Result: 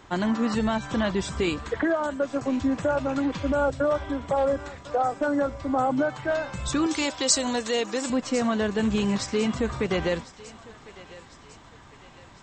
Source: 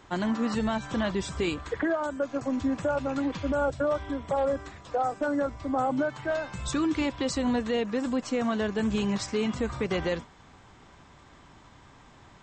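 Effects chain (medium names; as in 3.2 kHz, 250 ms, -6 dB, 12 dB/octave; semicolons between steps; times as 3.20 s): 6.86–8.10 s: tone controls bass -12 dB, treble +15 dB; on a send: thinning echo 1052 ms, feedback 52%, high-pass 530 Hz, level -17 dB; on the sum: trim +3 dB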